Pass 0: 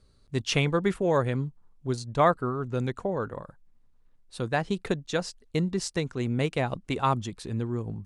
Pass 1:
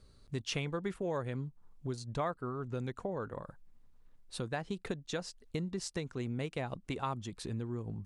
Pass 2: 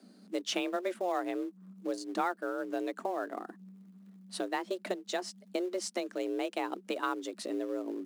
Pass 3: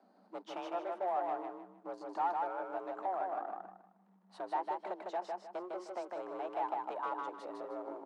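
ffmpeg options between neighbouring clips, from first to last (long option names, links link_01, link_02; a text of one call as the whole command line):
ffmpeg -i in.wav -af "acompressor=threshold=-40dB:ratio=2.5,volume=1dB" out.wav
ffmpeg -i in.wav -filter_complex "[0:a]asplit=2[link_01][link_02];[link_02]acrusher=bits=3:mode=log:mix=0:aa=0.000001,volume=-8.5dB[link_03];[link_01][link_03]amix=inputs=2:normalize=0,afreqshift=180" out.wav
ffmpeg -i in.wav -filter_complex "[0:a]asoftclip=type=tanh:threshold=-32dB,bandpass=frequency=850:width_type=q:width=4.1:csg=0,asplit=2[link_01][link_02];[link_02]aecho=0:1:154|308|462|616:0.708|0.205|0.0595|0.0173[link_03];[link_01][link_03]amix=inputs=2:normalize=0,volume=8.5dB" out.wav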